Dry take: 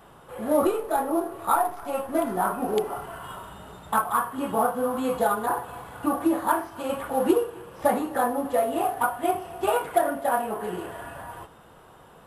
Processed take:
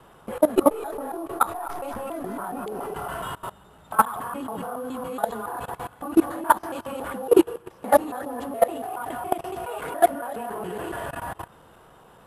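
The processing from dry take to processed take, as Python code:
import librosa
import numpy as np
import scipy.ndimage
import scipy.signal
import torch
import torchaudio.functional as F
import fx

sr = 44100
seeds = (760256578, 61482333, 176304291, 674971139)

y = fx.local_reverse(x, sr, ms=140.0)
y = fx.level_steps(y, sr, step_db=20)
y = F.gain(torch.from_numpy(y), 8.0).numpy()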